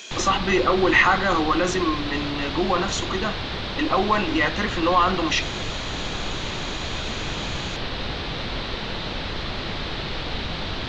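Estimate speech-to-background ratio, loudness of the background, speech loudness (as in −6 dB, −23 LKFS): 7.0 dB, −29.0 LKFS, −22.0 LKFS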